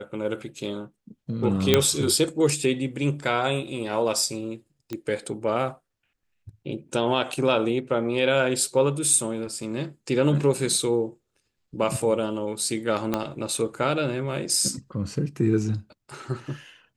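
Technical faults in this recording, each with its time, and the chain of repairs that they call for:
1.74 pop -2 dBFS
4.93 pop -18 dBFS
13.14 pop -10 dBFS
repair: de-click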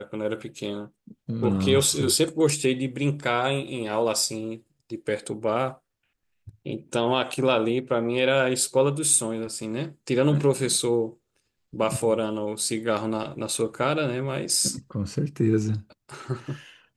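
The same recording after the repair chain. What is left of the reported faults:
13.14 pop

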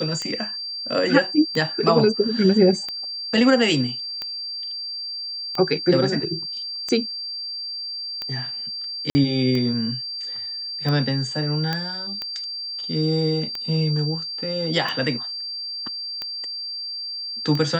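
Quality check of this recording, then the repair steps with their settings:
tick 45 rpm -15 dBFS
tone 4700 Hz -28 dBFS
9.1–9.15 gap 50 ms
11.73 pop -11 dBFS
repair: de-click; notch 4700 Hz, Q 30; interpolate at 9.1, 50 ms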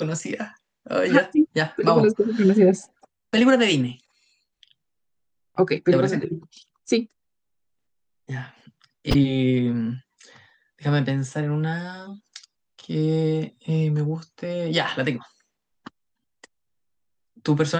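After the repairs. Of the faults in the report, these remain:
none

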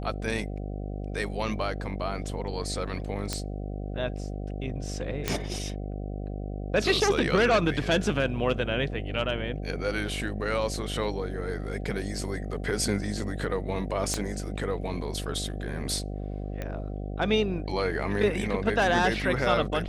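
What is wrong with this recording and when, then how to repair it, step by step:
buzz 50 Hz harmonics 15 -34 dBFS
3.33 pop -14 dBFS
5.28 pop -10 dBFS
14.14 pop -14 dBFS
16.62 pop -20 dBFS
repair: de-click; de-hum 50 Hz, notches 15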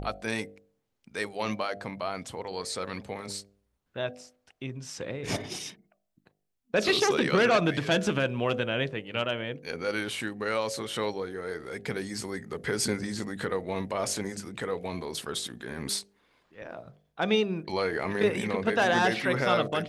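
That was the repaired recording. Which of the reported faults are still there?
14.14 pop

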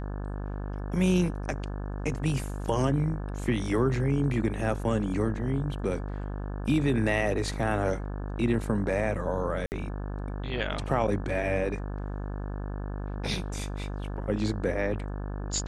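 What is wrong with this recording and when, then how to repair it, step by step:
buzz 50 Hz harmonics 35 -34 dBFS
9.66–9.72 gap 59 ms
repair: de-hum 50 Hz, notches 35; interpolate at 9.66, 59 ms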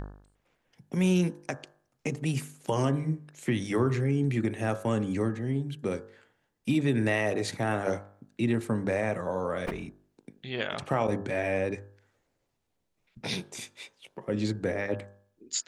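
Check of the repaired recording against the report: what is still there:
none

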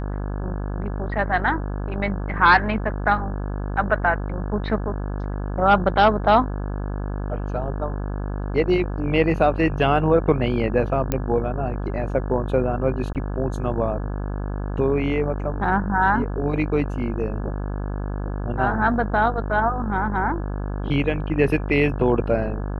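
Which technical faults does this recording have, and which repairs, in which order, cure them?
buzz 50 Hz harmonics 34 -27 dBFS
11.12 pop -8 dBFS
13.13–13.15 gap 18 ms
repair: de-click; de-hum 50 Hz, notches 34; interpolate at 13.13, 18 ms

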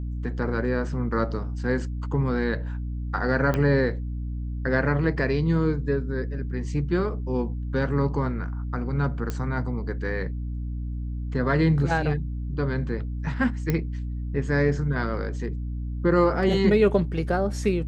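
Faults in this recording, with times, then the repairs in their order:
hum 60 Hz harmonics 5 -30 dBFS
3.54 pop -13 dBFS
9.3 pop -16 dBFS
13.7 pop -12 dBFS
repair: de-click; de-hum 60 Hz, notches 5

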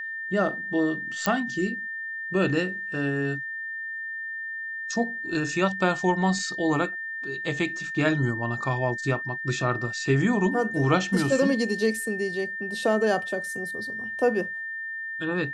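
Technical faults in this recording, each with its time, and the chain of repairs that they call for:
tone 1800 Hz -31 dBFS
1.26 pop -8 dBFS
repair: de-click; notch 1800 Hz, Q 30

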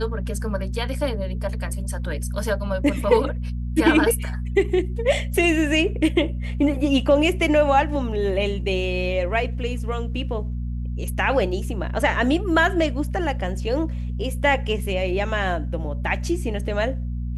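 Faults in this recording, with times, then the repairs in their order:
hum 60 Hz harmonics 4 -27 dBFS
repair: de-hum 60 Hz, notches 4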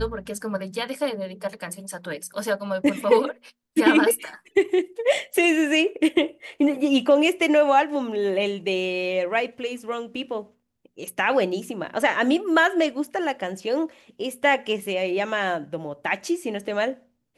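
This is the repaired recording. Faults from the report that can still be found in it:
none

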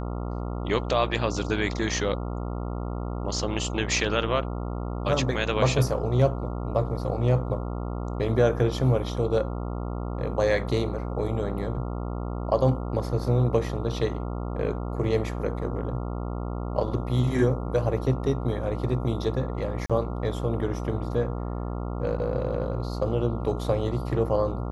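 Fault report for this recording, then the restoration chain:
buzz 60 Hz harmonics 23 -31 dBFS
19.86–19.9 gap 36 ms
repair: de-hum 60 Hz, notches 23; interpolate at 19.86, 36 ms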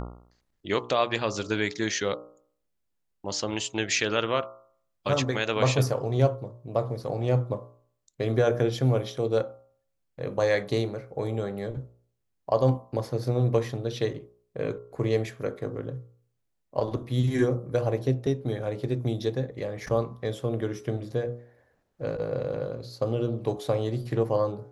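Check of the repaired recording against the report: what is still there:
none

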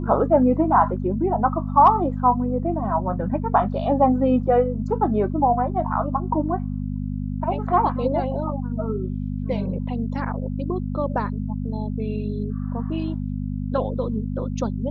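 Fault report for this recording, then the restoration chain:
hum 50 Hz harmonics 5 -27 dBFS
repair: de-hum 50 Hz, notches 5

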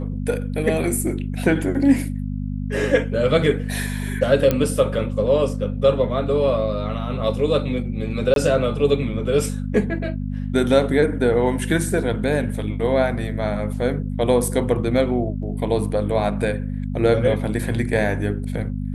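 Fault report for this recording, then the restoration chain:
hum 50 Hz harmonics 5 -26 dBFS
4.51 pop -6 dBFS
8.34–8.36 gap 22 ms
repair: de-click; de-hum 50 Hz, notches 5; interpolate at 8.34, 22 ms

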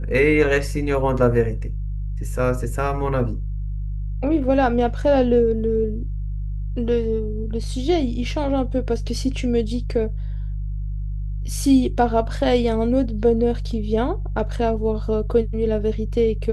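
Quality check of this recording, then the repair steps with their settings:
hum 50 Hz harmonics 3 -26 dBFS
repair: de-hum 50 Hz, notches 3

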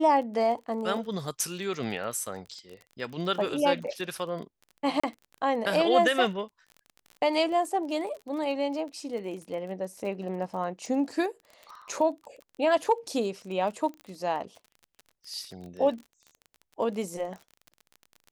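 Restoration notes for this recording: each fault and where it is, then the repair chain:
crackle 31/s -37 dBFS
5–5.04 gap 35 ms
14.01 pop -32 dBFS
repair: de-click; interpolate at 5, 35 ms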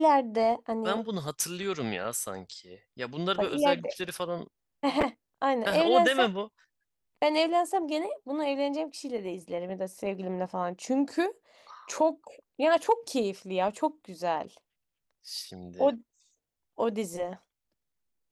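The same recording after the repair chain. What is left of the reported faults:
none

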